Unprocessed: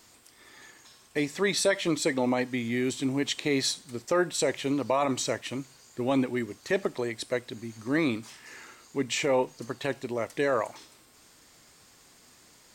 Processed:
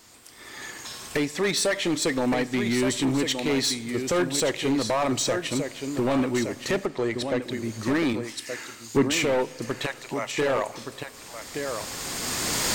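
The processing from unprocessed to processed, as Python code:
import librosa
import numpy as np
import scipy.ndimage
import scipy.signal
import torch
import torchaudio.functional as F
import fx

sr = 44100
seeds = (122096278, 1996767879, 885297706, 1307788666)

y = fx.recorder_agc(x, sr, target_db=-17.0, rise_db_per_s=14.0, max_gain_db=30)
y = fx.highpass(y, sr, hz=700.0, slope=24, at=(9.86, 10.38))
y = y + 10.0 ** (-9.0 / 20.0) * np.pad(y, (int(1171 * sr / 1000.0), 0))[:len(y)]
y = np.clip(y, -10.0 ** (-23.0 / 20.0), 10.0 ** (-23.0 / 20.0))
y = fx.lowpass(y, sr, hz=3300.0, slope=6, at=(6.86, 7.42))
y = fx.rev_spring(y, sr, rt60_s=3.2, pass_ms=(45,), chirp_ms=50, drr_db=19.5)
y = fx.band_widen(y, sr, depth_pct=100, at=(8.13, 9.12))
y = F.gain(torch.from_numpy(y), 3.5).numpy()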